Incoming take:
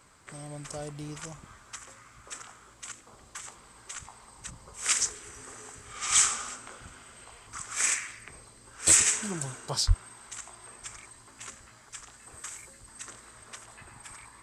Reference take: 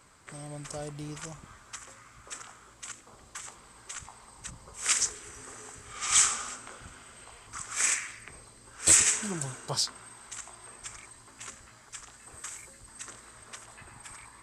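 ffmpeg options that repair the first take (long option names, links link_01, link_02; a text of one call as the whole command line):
ffmpeg -i in.wav -filter_complex "[0:a]asplit=3[link_01][link_02][link_03];[link_01]afade=type=out:start_time=9.87:duration=0.02[link_04];[link_02]highpass=frequency=140:width=0.5412,highpass=frequency=140:width=1.3066,afade=type=in:start_time=9.87:duration=0.02,afade=type=out:start_time=9.99:duration=0.02[link_05];[link_03]afade=type=in:start_time=9.99:duration=0.02[link_06];[link_04][link_05][link_06]amix=inputs=3:normalize=0" out.wav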